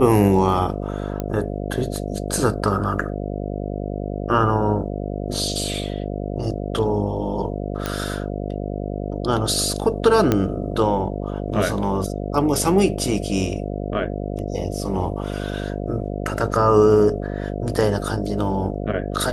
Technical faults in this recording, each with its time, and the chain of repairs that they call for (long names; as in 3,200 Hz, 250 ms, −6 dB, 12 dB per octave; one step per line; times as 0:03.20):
mains buzz 50 Hz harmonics 14 −27 dBFS
0:01.20: click −13 dBFS
0:07.86: click −9 dBFS
0:10.32: click −5 dBFS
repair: click removal
hum removal 50 Hz, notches 14